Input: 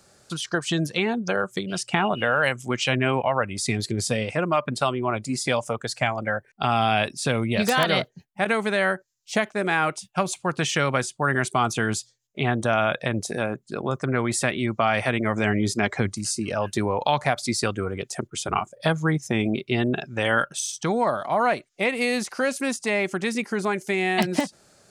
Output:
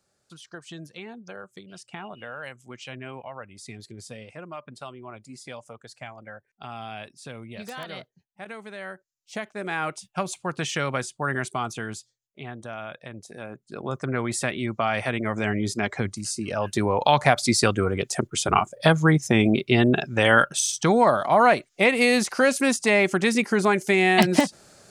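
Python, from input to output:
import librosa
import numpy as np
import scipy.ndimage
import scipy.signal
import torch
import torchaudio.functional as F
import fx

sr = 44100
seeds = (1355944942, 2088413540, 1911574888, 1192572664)

y = fx.gain(x, sr, db=fx.line((8.73, -16.0), (9.97, -4.0), (11.33, -4.0), (12.48, -14.5), (13.28, -14.5), (13.95, -3.0), (16.35, -3.0), (17.26, 4.5)))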